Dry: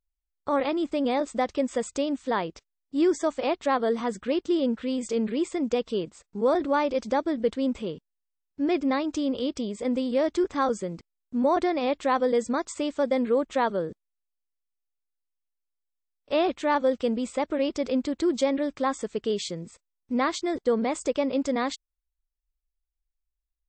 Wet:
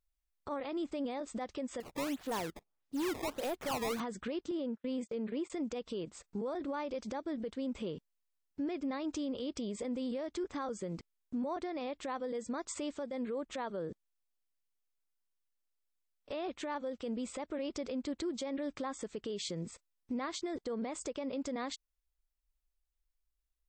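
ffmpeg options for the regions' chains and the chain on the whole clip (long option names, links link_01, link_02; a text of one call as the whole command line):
ffmpeg -i in.wav -filter_complex "[0:a]asettb=1/sr,asplit=3[link_01][link_02][link_03];[link_01]atrim=end=1.804[link_04];[link_02]atrim=start=1.8:end=4,asetpts=PTS-STARTPTS,afade=type=in:duration=0.004:curve=qsin,afade=type=out:start_time=2.196:duration=0.004:curve=qsin,volume=23.5dB,asoftclip=hard,volume=-23.5dB,acompressor=threshold=-43dB:ratio=1.5:attack=3.2:release=140:knee=1:detection=peak,acrusher=samples=17:mix=1:aa=0.000001:lfo=1:lforange=27.2:lforate=1.6[link_05];[link_03]atrim=start=3.996[link_06];[link_04][link_05]acrossfade=duration=0.004:curve1=hsin:curve2=qsin[link_07];[link_07][link_06]acrossfade=duration=0.004:curve1=qsin:curve2=hsin,asettb=1/sr,asplit=3[link_08][link_09][link_10];[link_08]atrim=end=4.514[link_11];[link_09]atrim=start=4.51:end=5.5,asetpts=PTS-STARTPTS,afade=type=in:duration=0.004:curve=qsin,afade=type=out:start_time=0.986:duration=0.004:curve=qsin,highpass=frequency=180:poles=1,agate=range=-40dB:threshold=-36dB:ratio=16:release=100:detection=peak,highshelf=frequency=3200:gain=-8.5[link_12];[link_10]atrim=start=5.496[link_13];[link_11][link_12]acrossfade=duration=0.004:curve1=hsin:curve2=qsin[link_14];[link_14][link_13]acrossfade=duration=0.004:curve1=qsin:curve2=hsin,acompressor=threshold=-32dB:ratio=10,alimiter=level_in=6dB:limit=-24dB:level=0:latency=1,volume=-6dB" out.wav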